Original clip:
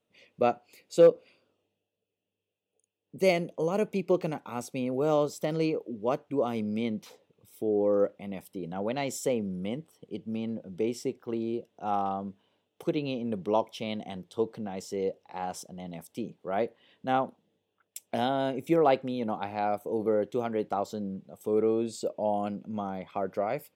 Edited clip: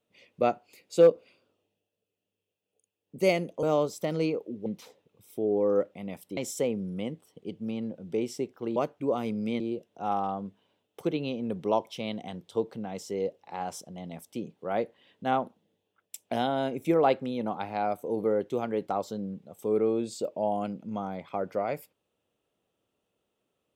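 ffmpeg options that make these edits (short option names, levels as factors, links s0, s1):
-filter_complex "[0:a]asplit=6[s0][s1][s2][s3][s4][s5];[s0]atrim=end=3.632[s6];[s1]atrim=start=5.028:end=6.062[s7];[s2]atrim=start=6.898:end=8.612[s8];[s3]atrim=start=9.028:end=11.422[s9];[s4]atrim=start=6.058:end=6.902[s10];[s5]atrim=start=11.418[s11];[s6][s7]acrossfade=d=0.004:c1=hsin:c2=hsin[s12];[s12][s8]acrossfade=d=0.004:c1=hsin:c2=hsin[s13];[s13][s9]acrossfade=d=0.004:c1=hsin:c2=hsin[s14];[s14][s10]acrossfade=d=0.004:c1=hsin:c2=hsin[s15];[s15][s11]acrossfade=d=0.004:c1=hsin:c2=hsin"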